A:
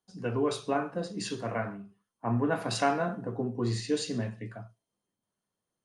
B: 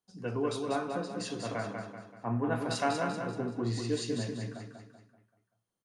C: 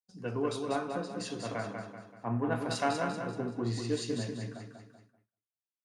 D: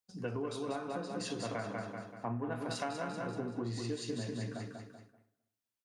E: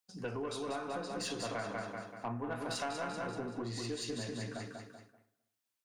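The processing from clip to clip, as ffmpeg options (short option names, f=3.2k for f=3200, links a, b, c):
-af "aecho=1:1:192|384|576|768|960:0.562|0.247|0.109|0.0479|0.0211,volume=-3.5dB"
-af "aeval=exprs='0.158*(cos(1*acos(clip(val(0)/0.158,-1,1)))-cos(1*PI/2))+0.00316*(cos(7*acos(clip(val(0)/0.158,-1,1)))-cos(7*PI/2))':c=same,agate=range=-33dB:threshold=-59dB:ratio=3:detection=peak"
-filter_complex "[0:a]acompressor=threshold=-38dB:ratio=6,asplit=2[a][b];[b]adelay=258,lowpass=f=1.5k:p=1,volume=-20dB,asplit=2[c][d];[d]adelay=258,lowpass=f=1.5k:p=1,volume=0.15[e];[a][c][e]amix=inputs=3:normalize=0,volume=3.5dB"
-af "lowshelf=f=430:g=-7,aeval=exprs='(tanh(44.7*val(0)+0.15)-tanh(0.15))/44.7':c=same,volume=4dB"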